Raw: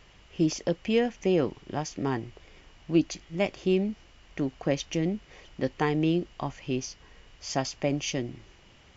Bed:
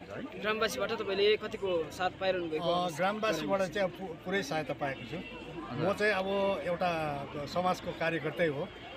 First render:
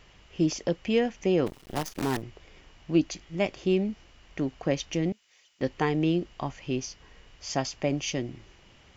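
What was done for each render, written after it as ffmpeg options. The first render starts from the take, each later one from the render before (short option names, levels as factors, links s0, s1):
-filter_complex "[0:a]asplit=3[s0][s1][s2];[s0]afade=t=out:st=1.46:d=0.02[s3];[s1]acrusher=bits=6:dc=4:mix=0:aa=0.000001,afade=t=in:st=1.46:d=0.02,afade=t=out:st=2.21:d=0.02[s4];[s2]afade=t=in:st=2.21:d=0.02[s5];[s3][s4][s5]amix=inputs=3:normalize=0,asettb=1/sr,asplit=3[s6][s7][s8];[s6]atrim=end=5.124[s9];[s7]atrim=start=5.12:end=5.61,asetpts=PTS-STARTPTS,afade=t=in:d=0.004:c=qsin,afade=t=out:st=0.486:d=0.004:c=qsin,aderivative[s10];[s8]atrim=start=5.606[s11];[s9][s10]acrossfade=d=0.004:c1=hsin:c2=qsin[s12];[s12][s11]acrossfade=d=0.004:c1=qsin:c2=hsin"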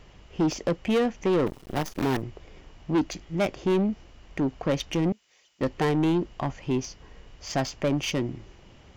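-filter_complex "[0:a]asplit=2[s0][s1];[s1]adynamicsmooth=sensitivity=7:basefreq=1200,volume=1.06[s2];[s0][s2]amix=inputs=2:normalize=0,asoftclip=type=tanh:threshold=0.119"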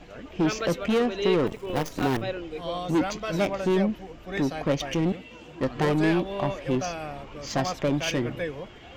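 -filter_complex "[1:a]volume=0.841[s0];[0:a][s0]amix=inputs=2:normalize=0"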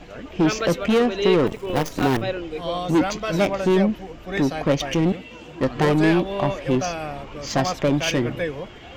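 -af "volume=1.78"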